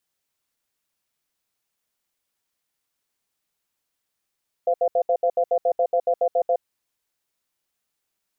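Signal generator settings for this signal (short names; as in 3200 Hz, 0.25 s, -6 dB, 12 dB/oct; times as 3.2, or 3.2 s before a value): cadence 515 Hz, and 691 Hz, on 0.07 s, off 0.07 s, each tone -19.5 dBFS 1.94 s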